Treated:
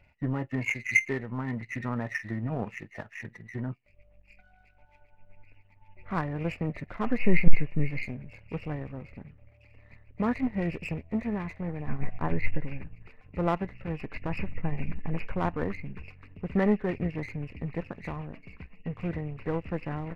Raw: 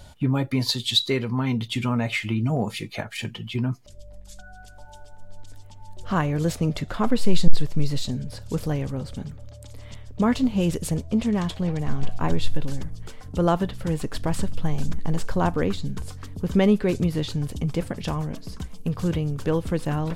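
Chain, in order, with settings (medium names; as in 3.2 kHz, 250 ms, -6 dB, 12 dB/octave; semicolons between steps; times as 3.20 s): knee-point frequency compression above 1.7 kHz 4:1; power-law waveshaper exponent 1.4; trim -1.5 dB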